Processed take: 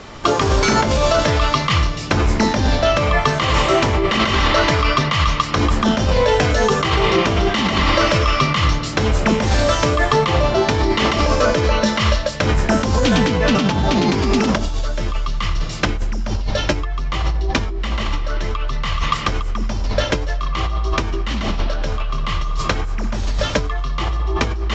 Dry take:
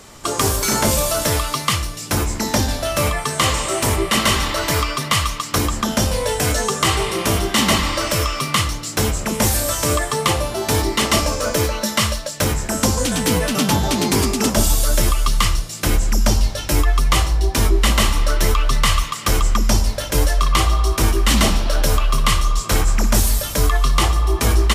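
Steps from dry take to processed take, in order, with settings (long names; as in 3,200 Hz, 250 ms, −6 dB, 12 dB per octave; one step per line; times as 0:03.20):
low-pass filter 3,800 Hz 12 dB per octave
on a send: feedback echo with a low-pass in the loop 87 ms, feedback 68%, level −17.5 dB
on the sum: compressor whose output falls as the input rises −21 dBFS, ratio −1
level +4 dB
AAC 64 kbit/s 16,000 Hz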